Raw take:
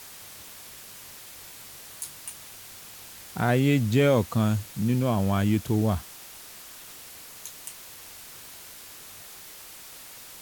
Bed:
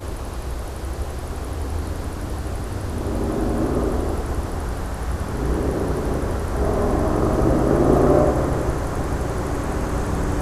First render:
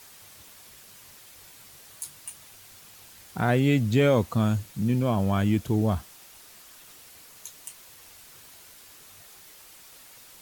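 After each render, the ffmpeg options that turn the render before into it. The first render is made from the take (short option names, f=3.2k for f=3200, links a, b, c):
-af "afftdn=nr=6:nf=-45"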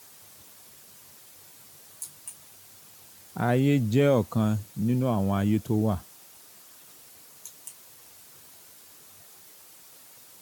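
-af "highpass=96,equalizer=f=2.4k:t=o:w=2.1:g=-5"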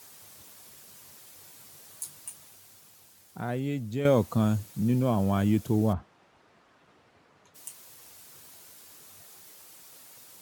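-filter_complex "[0:a]asplit=3[a][b][c];[a]afade=t=out:st=5.92:d=0.02[d];[b]lowpass=1.9k,afade=t=in:st=5.92:d=0.02,afade=t=out:st=7.54:d=0.02[e];[c]afade=t=in:st=7.54:d=0.02[f];[d][e][f]amix=inputs=3:normalize=0,asplit=2[g][h];[g]atrim=end=4.05,asetpts=PTS-STARTPTS,afade=t=out:st=2.19:d=1.86:c=qua:silence=0.334965[i];[h]atrim=start=4.05,asetpts=PTS-STARTPTS,afade=t=in:d=0.004:c=hsin:silence=0.334965[j];[i][j]concat=n=2:v=0:a=1"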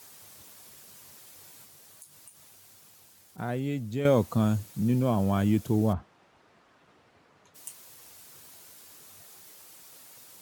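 -filter_complex "[0:a]asettb=1/sr,asplit=3[a][b][c];[a]atrim=end=1.644[d];[b]atrim=start=1.64:end=3.38,asetpts=PTS-STARTPTS,afade=t=in:d=0.004:c=qsin,afade=t=out:st=1.736:d=0.004:c=qsin,acompressor=threshold=-50dB:ratio=3:attack=3.2:release=140:knee=1:detection=peak[e];[c]atrim=start=3.376[f];[d][e]acrossfade=d=0.004:c1=hsin:c2=qsin[g];[g][f]acrossfade=d=0.004:c1=qsin:c2=hsin"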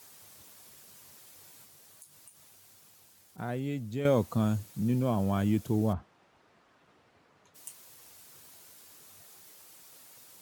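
-af "volume=-3dB"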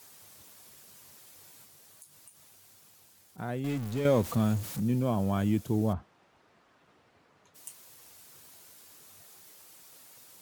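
-filter_complex "[0:a]asettb=1/sr,asplit=3[a][b][c];[a]atrim=end=3.644[d];[b]atrim=start=3.64:end=4.8,asetpts=PTS-STARTPTS,afade=t=in:d=0.004:c=qsin,afade=t=out:st=1.156:d=0.004:c=qsin,aeval=exprs='val(0)+0.5*0.015*sgn(val(0))':c=same[e];[c]atrim=start=4.796[f];[d][e]acrossfade=d=0.004:c1=hsin:c2=qsin[g];[g][f]acrossfade=d=0.004:c1=qsin:c2=hsin"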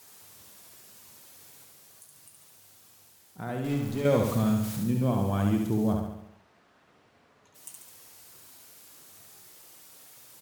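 -af "aecho=1:1:70|140|210|280|350|420|490:0.631|0.347|0.191|0.105|0.0577|0.0318|0.0175"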